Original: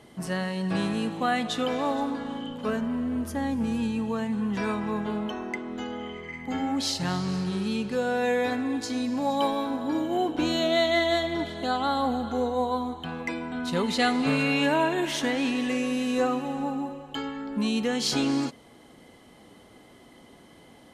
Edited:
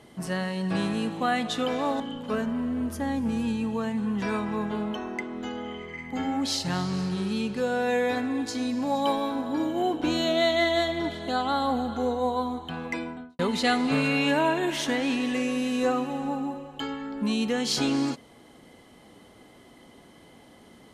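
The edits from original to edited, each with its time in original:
2–2.35 cut
13.34–13.74 studio fade out

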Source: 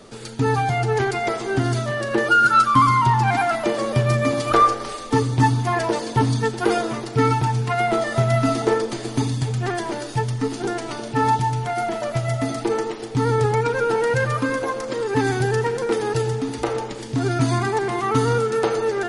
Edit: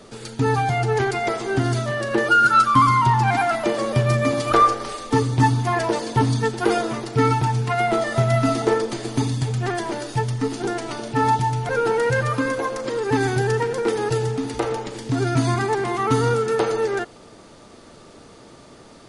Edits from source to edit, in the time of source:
11.69–13.73 cut

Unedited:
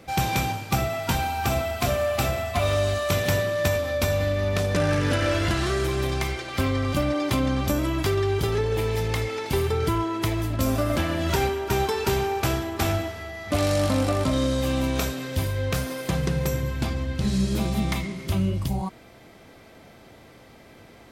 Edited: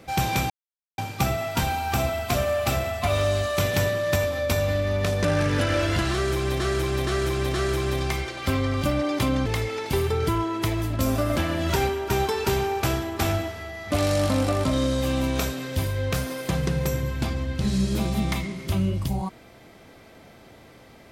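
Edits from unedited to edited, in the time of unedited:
0.5 insert silence 0.48 s
5.65–6.12 loop, 4 plays
7.57–9.06 cut

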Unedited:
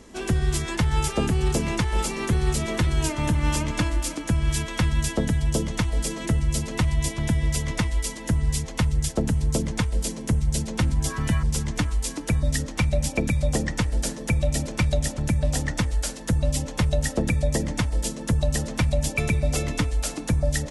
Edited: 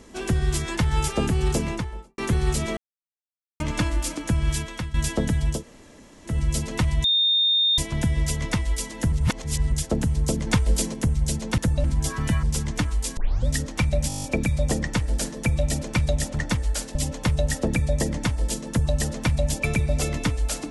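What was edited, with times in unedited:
1.53–2.18 studio fade out
2.77–3.6 mute
4.49–4.94 fade out, to -14.5 dB
5.57–6.31 room tone, crossfade 0.16 s
7.04 add tone 3650 Hz -17 dBFS 0.74 s
8.38–8.98 reverse
9.73–10.2 gain +4 dB
12.17 tape start 0.30 s
13.08 stutter 0.02 s, 9 plays
15.23–15.67 cut
16.23–16.49 move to 10.84

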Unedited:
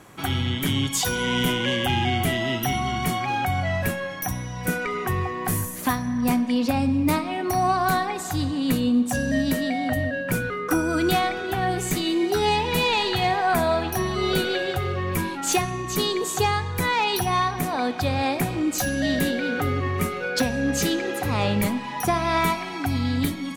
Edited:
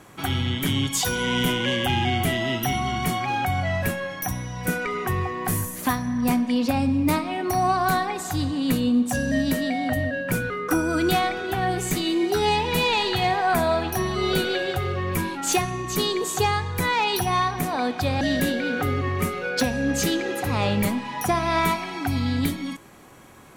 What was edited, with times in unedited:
18.21–19 cut

